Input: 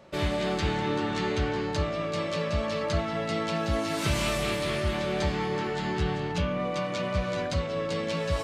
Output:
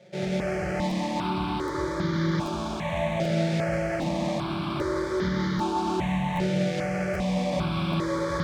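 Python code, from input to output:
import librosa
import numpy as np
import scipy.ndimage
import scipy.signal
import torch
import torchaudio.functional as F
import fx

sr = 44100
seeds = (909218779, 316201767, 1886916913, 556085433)

y = fx.rider(x, sr, range_db=10, speed_s=0.5)
y = y + 0.58 * np.pad(y, (int(5.6 * sr / 1000.0), 0))[:len(y)]
y = fx.sample_hold(y, sr, seeds[0], rate_hz=2900.0, jitter_pct=20)
y = scipy.signal.sosfilt(scipy.signal.butter(2, 91.0, 'highpass', fs=sr, output='sos'), y)
y = fx.air_absorb(y, sr, metres=110.0)
y = fx.rev_schroeder(y, sr, rt60_s=3.3, comb_ms=33, drr_db=-1.5)
y = fx.buffer_crackle(y, sr, first_s=0.89, period_s=0.78, block=512, kind='repeat')
y = fx.phaser_held(y, sr, hz=2.5, low_hz=280.0, high_hz=2600.0)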